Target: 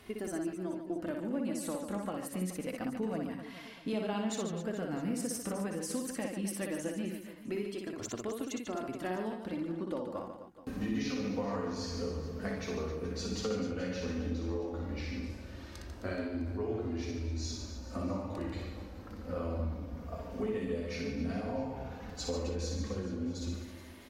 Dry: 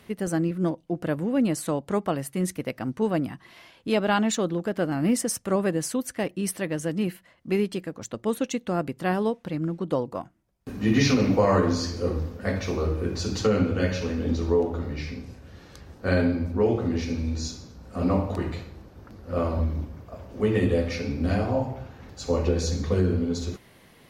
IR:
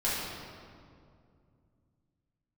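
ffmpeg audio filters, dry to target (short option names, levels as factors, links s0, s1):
-filter_complex "[0:a]acompressor=threshold=0.0224:ratio=6,flanger=delay=2.8:depth=1.8:regen=-27:speed=0.12:shape=triangular,asplit=2[s0][s1];[s1]aecho=0:1:60|144|261.6|426.2|656.7:0.631|0.398|0.251|0.158|0.1[s2];[s0][s2]amix=inputs=2:normalize=0,volume=1.19"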